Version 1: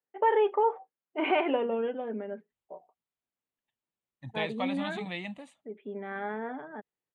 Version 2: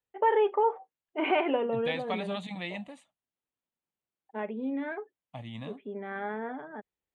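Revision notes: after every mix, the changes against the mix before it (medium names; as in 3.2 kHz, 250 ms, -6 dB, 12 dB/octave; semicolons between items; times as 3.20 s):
second voice: entry -2.50 s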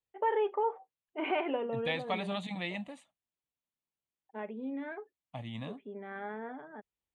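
first voice -5.5 dB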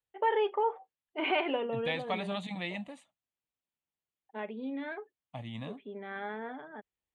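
first voice: remove distance through air 430 m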